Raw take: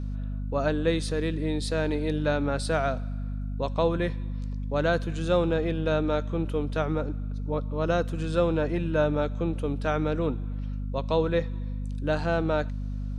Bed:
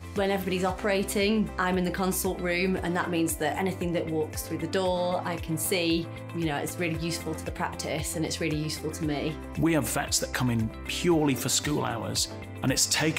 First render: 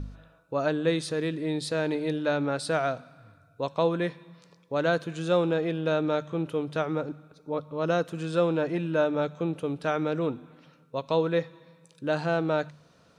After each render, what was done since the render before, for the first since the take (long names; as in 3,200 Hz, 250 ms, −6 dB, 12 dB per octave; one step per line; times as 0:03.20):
hum removal 50 Hz, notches 5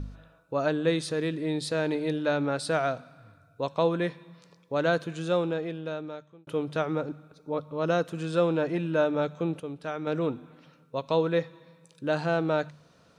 0:05.03–0:06.47: fade out
0:09.60–0:10.07: clip gain −6.5 dB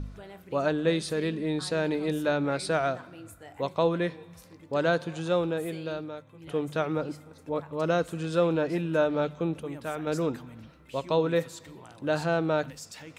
mix in bed −20 dB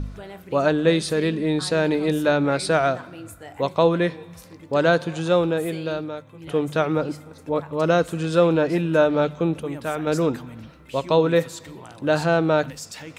level +7 dB